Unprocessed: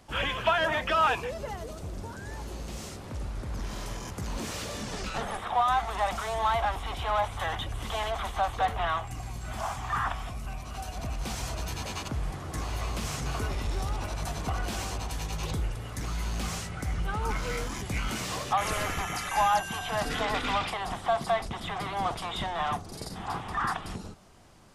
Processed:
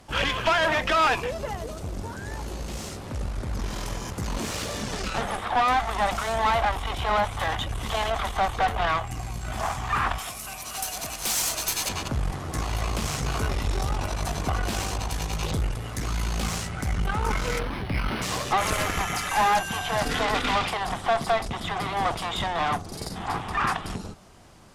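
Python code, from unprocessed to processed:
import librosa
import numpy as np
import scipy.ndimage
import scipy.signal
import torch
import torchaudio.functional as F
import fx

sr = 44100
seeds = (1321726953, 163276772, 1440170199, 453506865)

y = fx.riaa(x, sr, side='recording', at=(10.18, 11.89))
y = fx.tube_stage(y, sr, drive_db=25.0, bias=0.7)
y = fx.resample_linear(y, sr, factor=6, at=(17.59, 18.22))
y = y * librosa.db_to_amplitude(8.5)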